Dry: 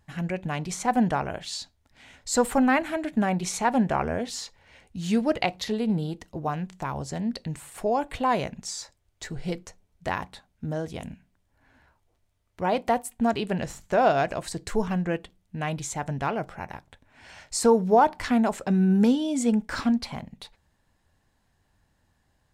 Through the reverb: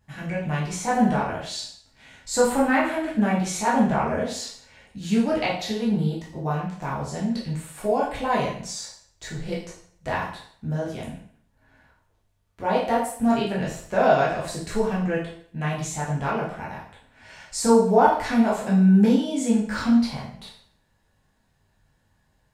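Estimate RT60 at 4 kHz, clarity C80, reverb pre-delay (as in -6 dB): 0.55 s, 8.5 dB, 5 ms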